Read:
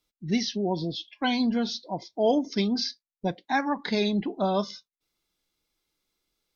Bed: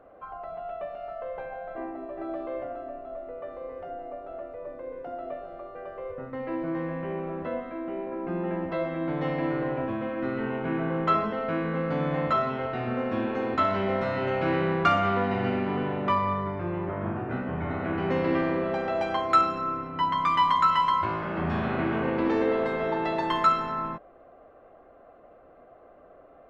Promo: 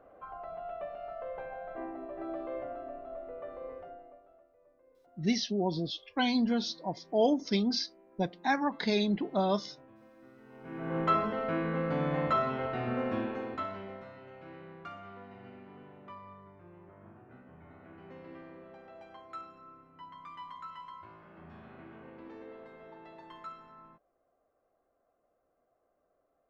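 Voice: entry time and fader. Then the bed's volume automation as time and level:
4.95 s, -3.0 dB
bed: 3.72 s -4.5 dB
4.48 s -26.5 dB
10.44 s -26.5 dB
10.97 s -3.5 dB
13.11 s -3.5 dB
14.24 s -23.5 dB

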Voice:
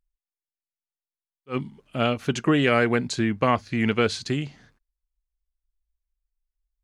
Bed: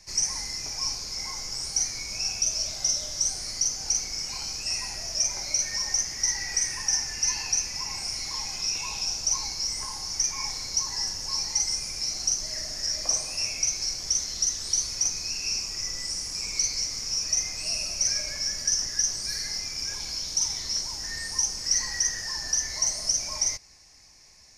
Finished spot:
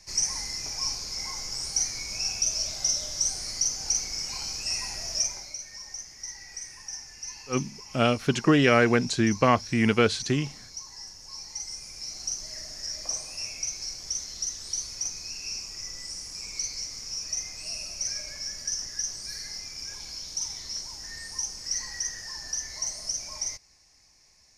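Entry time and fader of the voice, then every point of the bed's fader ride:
6.00 s, +0.5 dB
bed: 5.19 s -0.5 dB
5.59 s -13 dB
11.18 s -13 dB
12.35 s -6 dB

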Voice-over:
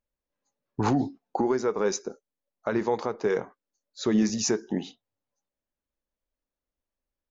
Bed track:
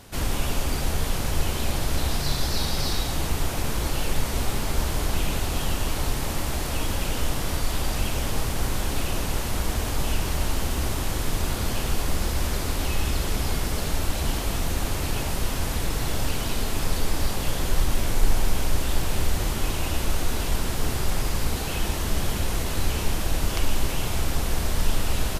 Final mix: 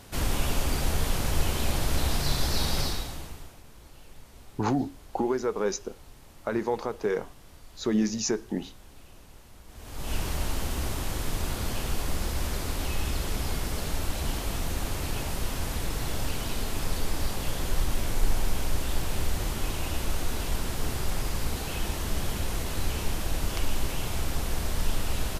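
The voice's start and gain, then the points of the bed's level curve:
3.80 s, -2.0 dB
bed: 2.80 s -1.5 dB
3.63 s -24.5 dB
9.66 s -24.5 dB
10.15 s -4.5 dB

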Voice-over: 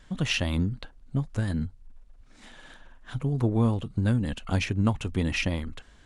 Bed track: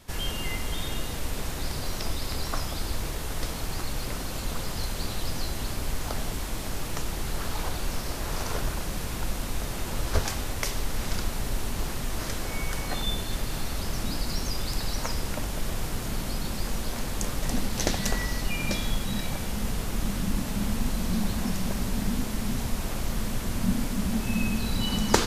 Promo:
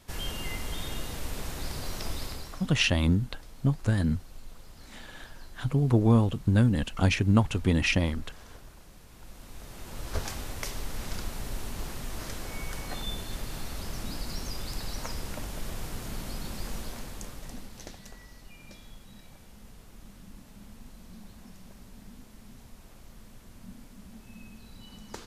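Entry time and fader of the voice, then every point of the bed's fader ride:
2.50 s, +2.5 dB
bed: 2.23 s -4 dB
2.78 s -20.5 dB
9.07 s -20.5 dB
10.25 s -6 dB
16.78 s -6 dB
18.11 s -21 dB

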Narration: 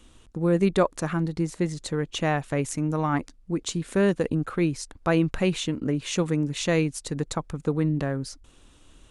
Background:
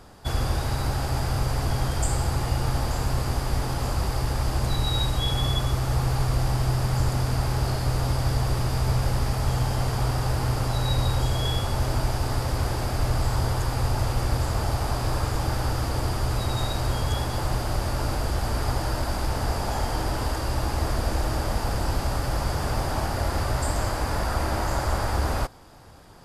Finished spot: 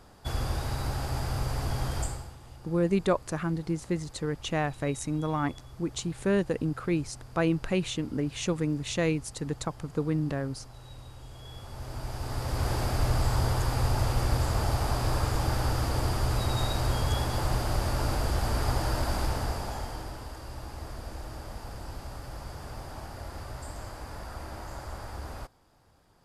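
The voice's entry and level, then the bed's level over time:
2.30 s, -4.0 dB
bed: 2.01 s -5.5 dB
2.37 s -23.5 dB
11.22 s -23.5 dB
12.72 s -2 dB
19.22 s -2 dB
20.25 s -14.5 dB

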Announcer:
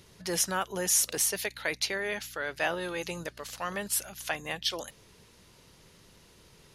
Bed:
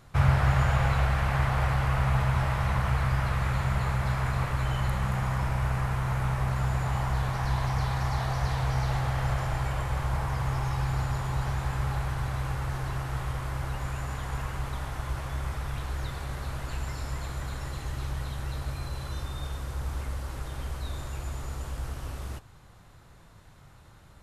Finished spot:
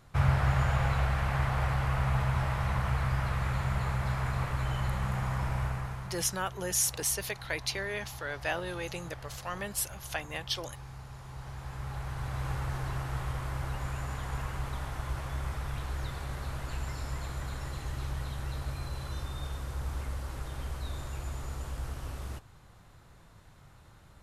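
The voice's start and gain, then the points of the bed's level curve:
5.85 s, -3.0 dB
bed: 5.61 s -3.5 dB
6.35 s -17 dB
11.09 s -17 dB
12.51 s -2.5 dB

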